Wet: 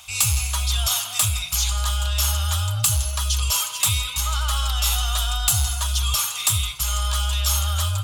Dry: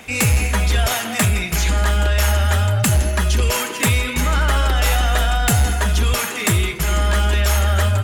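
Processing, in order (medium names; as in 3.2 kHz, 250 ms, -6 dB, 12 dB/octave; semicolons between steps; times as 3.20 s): FFT filter 110 Hz 0 dB, 220 Hz -25 dB, 400 Hz -29 dB, 600 Hz -10 dB, 1.2 kHz +4 dB, 1.8 kHz -13 dB, 3.3 kHz +9 dB; trim -6.5 dB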